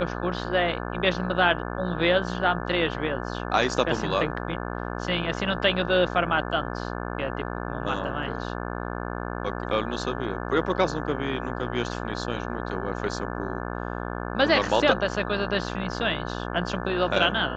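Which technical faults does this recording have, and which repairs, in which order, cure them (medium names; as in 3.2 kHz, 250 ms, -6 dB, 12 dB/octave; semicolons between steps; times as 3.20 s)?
buzz 60 Hz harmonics 29 -32 dBFS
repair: de-hum 60 Hz, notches 29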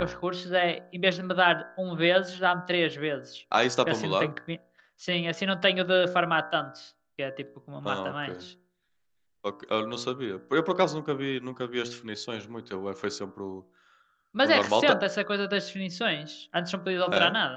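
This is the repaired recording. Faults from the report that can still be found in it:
nothing left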